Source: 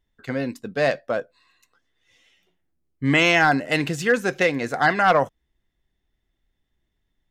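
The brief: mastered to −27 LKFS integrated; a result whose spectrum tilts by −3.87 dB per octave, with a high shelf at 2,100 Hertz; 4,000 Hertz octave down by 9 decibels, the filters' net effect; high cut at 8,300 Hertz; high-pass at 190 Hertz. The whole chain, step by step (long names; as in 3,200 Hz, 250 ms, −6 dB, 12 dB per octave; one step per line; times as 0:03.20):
high-pass filter 190 Hz
low-pass filter 8,300 Hz
high-shelf EQ 2,100 Hz −9 dB
parametric band 4,000 Hz −4 dB
level −3.5 dB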